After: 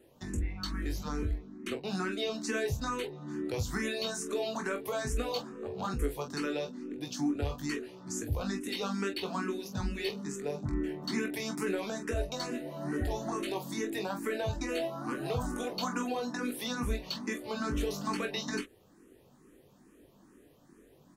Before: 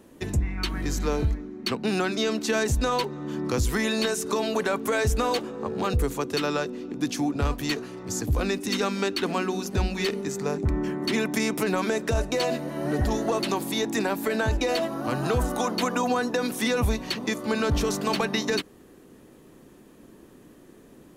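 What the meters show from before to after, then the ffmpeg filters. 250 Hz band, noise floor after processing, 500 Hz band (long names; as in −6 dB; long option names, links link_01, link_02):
−7.5 dB, −61 dBFS, −9.0 dB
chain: -filter_complex "[0:a]aecho=1:1:21|45:0.531|0.316,asplit=2[link_01][link_02];[link_02]afreqshift=2.3[link_03];[link_01][link_03]amix=inputs=2:normalize=1,volume=-7dB"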